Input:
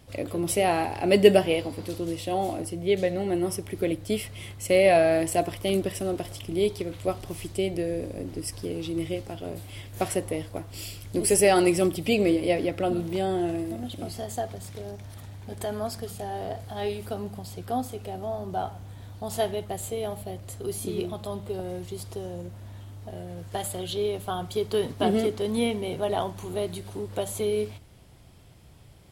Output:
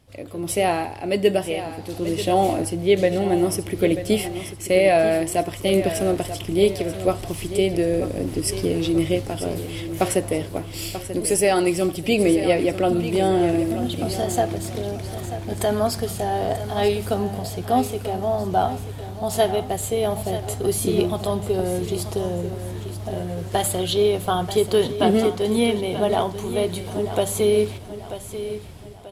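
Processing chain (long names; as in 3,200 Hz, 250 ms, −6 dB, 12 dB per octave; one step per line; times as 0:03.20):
automatic gain control gain up to 15.5 dB
repeating echo 937 ms, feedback 38%, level −11.5 dB
level −5 dB
Ogg Vorbis 128 kbit/s 32,000 Hz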